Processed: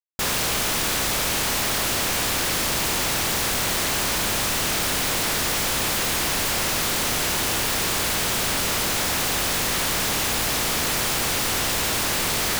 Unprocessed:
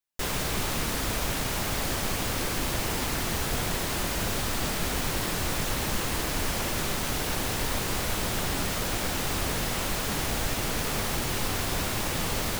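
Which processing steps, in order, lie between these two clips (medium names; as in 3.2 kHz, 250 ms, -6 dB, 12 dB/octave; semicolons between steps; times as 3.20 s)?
spectral contrast reduction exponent 0.5; Schmitt trigger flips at -36.5 dBFS; trim +5 dB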